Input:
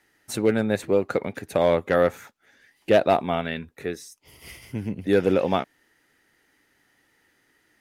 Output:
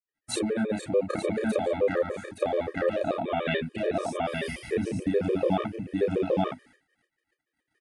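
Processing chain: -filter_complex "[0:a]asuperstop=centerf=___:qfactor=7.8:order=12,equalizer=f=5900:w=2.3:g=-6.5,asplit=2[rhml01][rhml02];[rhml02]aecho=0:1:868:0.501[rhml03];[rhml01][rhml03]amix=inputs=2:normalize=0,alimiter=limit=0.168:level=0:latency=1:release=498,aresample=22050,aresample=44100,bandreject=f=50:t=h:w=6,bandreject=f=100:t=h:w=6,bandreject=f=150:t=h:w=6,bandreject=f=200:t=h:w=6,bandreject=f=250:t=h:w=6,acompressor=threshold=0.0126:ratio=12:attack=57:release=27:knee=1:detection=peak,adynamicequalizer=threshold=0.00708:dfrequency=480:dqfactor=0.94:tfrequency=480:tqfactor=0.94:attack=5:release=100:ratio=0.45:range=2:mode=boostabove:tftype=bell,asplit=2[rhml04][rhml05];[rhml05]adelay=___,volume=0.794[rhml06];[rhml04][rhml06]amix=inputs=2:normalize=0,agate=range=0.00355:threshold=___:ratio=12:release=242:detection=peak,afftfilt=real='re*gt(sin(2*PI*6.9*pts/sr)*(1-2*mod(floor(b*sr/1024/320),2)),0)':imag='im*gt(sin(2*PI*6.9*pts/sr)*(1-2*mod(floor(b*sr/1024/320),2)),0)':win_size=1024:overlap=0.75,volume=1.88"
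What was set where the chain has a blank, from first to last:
990, 32, 0.00126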